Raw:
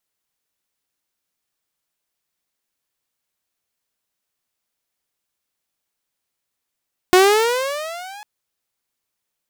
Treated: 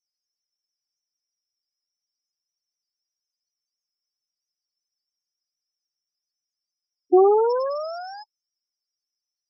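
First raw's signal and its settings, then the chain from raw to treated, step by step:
gliding synth tone saw, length 1.10 s, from 359 Hz, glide +15 st, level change -27.5 dB, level -5 dB
bell 5400 Hz +15 dB 0.84 oct; loudest bins only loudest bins 4

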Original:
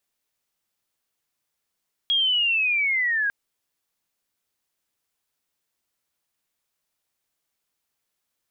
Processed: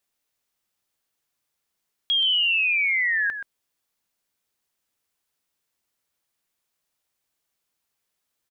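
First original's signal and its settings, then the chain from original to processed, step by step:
chirp linear 3300 Hz -> 1600 Hz -18 dBFS -> -20.5 dBFS 1.20 s
echo 0.127 s -9.5 dB

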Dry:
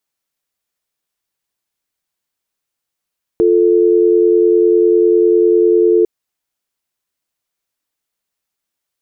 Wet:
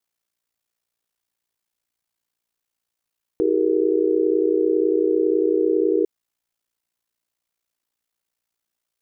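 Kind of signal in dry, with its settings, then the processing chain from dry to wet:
call progress tone dial tone, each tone -10.5 dBFS 2.65 s
limiter -10 dBFS; ring modulator 29 Hz

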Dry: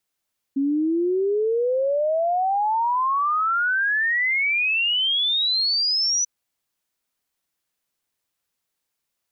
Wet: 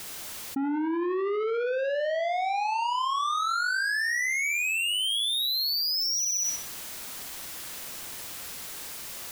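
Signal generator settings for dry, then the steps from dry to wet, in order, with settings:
log sweep 270 Hz -> 6000 Hz 5.69 s -18.5 dBFS
soft clip -29 dBFS; on a send: flutter echo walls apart 10.7 m, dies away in 0.44 s; on the sum: fast leveller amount 100%

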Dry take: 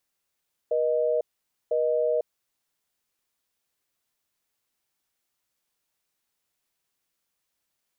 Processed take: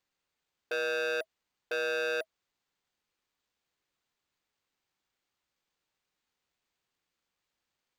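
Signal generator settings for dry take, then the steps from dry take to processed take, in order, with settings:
call progress tone busy tone, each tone -24 dBFS 1.77 s
notch 640 Hz, Q 15; careless resampling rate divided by 4×, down filtered, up hold; core saturation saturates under 2000 Hz

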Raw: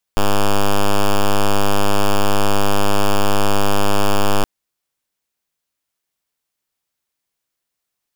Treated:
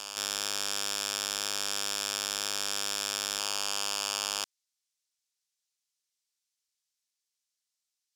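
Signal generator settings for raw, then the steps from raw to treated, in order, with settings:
pulse 101 Hz, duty 5% -12 dBFS 4.27 s
band-pass 5800 Hz, Q 1.3; reverse echo 1.049 s -8 dB

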